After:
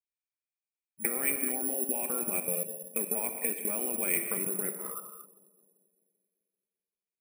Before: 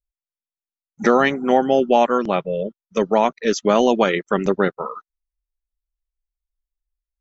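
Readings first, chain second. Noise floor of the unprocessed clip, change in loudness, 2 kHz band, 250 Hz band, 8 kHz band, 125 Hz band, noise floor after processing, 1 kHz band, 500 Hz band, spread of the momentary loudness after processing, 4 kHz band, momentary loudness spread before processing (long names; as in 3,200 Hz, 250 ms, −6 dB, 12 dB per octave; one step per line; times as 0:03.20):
below −85 dBFS, −11.0 dB, −13.0 dB, −18.5 dB, can't be measured, −17.5 dB, below −85 dBFS, −24.5 dB, −20.5 dB, 8 LU, below −25 dB, 9 LU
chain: high-pass filter 180 Hz 12 dB per octave
tilt shelving filter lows +6.5 dB, about 700 Hz
output level in coarse steps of 22 dB
brickwall limiter −19.5 dBFS, peak gain reduction 9 dB
downward compressor 10 to 1, threshold −32 dBFS, peak gain reduction 9.5 dB
low-pass with resonance 2,400 Hz, resonance Q 14
on a send: bucket-brigade delay 389 ms, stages 2,048, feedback 34%, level −20 dB
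on the sum: reverb whose tail is shaped and stops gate 270 ms flat, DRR 5 dB
bad sample-rate conversion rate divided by 4×, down filtered, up zero stuff
level −3.5 dB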